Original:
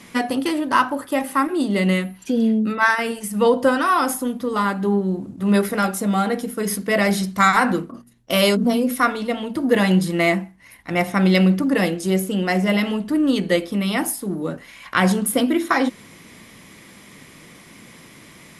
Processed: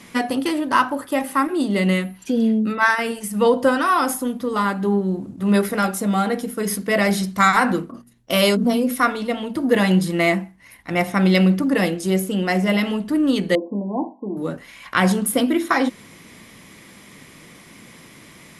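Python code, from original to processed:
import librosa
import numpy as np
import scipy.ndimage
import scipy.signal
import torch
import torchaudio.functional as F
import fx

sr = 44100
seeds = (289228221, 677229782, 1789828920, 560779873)

y = fx.brickwall_bandpass(x, sr, low_hz=190.0, high_hz=1100.0, at=(13.55, 14.37))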